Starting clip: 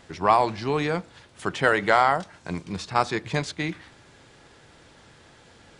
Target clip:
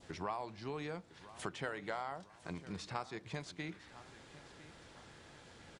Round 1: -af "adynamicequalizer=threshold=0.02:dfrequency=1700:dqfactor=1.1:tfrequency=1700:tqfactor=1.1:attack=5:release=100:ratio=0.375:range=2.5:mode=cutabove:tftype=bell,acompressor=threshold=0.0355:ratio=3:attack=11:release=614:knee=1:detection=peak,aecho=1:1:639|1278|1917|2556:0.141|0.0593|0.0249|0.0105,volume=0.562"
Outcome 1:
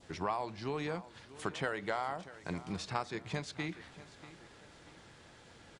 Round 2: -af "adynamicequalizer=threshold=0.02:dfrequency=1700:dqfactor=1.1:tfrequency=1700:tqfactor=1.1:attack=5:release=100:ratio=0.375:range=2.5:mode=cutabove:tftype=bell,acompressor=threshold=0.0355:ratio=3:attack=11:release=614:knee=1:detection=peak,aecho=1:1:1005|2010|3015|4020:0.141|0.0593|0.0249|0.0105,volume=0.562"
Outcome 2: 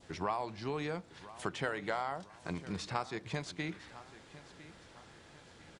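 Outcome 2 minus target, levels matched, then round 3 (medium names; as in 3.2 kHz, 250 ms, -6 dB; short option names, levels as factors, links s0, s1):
compression: peak gain reduction -5 dB
-af "adynamicequalizer=threshold=0.02:dfrequency=1700:dqfactor=1.1:tfrequency=1700:tqfactor=1.1:attack=5:release=100:ratio=0.375:range=2.5:mode=cutabove:tftype=bell,acompressor=threshold=0.015:ratio=3:attack=11:release=614:knee=1:detection=peak,aecho=1:1:1005|2010|3015|4020:0.141|0.0593|0.0249|0.0105,volume=0.562"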